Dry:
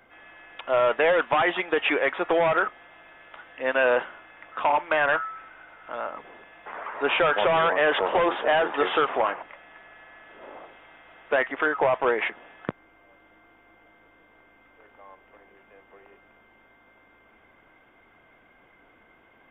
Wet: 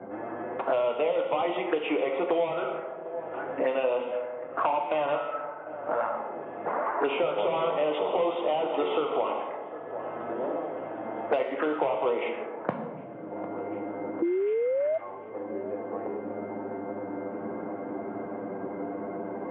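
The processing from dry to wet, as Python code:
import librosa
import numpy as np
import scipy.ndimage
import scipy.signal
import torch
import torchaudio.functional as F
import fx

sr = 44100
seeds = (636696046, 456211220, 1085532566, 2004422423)

p1 = fx.env_flanger(x, sr, rest_ms=11.2, full_db=-23.5)
p2 = scipy.signal.sosfilt(scipy.signal.bessel(2, 170.0, 'highpass', norm='mag', fs=sr, output='sos'), p1)
p3 = fx.rider(p2, sr, range_db=10, speed_s=0.5)
p4 = p2 + (p3 * librosa.db_to_amplitude(2.0))
p5 = fx.rev_plate(p4, sr, seeds[0], rt60_s=1.1, hf_ratio=0.95, predelay_ms=0, drr_db=3.0)
p6 = fx.spec_paint(p5, sr, seeds[1], shape='rise', start_s=14.22, length_s=0.76, low_hz=330.0, high_hz=660.0, level_db=-25.0)
p7 = p6 + fx.echo_thinned(p6, sr, ms=751, feedback_pct=66, hz=1100.0, wet_db=-21, dry=0)
p8 = fx.env_lowpass(p7, sr, base_hz=460.0, full_db=-13.5)
p9 = scipy.signal.sosfilt(scipy.signal.bessel(2, 2000.0, 'lowpass', norm='mag', fs=sr, output='sos'), p8)
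p10 = fx.band_squash(p9, sr, depth_pct=100)
y = p10 * librosa.db_to_amplitude(-8.0)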